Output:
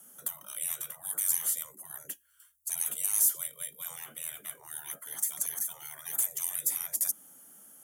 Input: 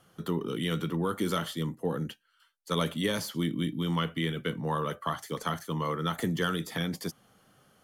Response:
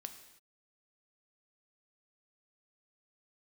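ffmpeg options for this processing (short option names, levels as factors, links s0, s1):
-af "afreqshift=67,afftfilt=real='re*lt(hypot(re,im),0.0282)':imag='im*lt(hypot(re,im),0.0282)':win_size=1024:overlap=0.75,aexciter=amount=12.8:drive=5:freq=6500,volume=0.631"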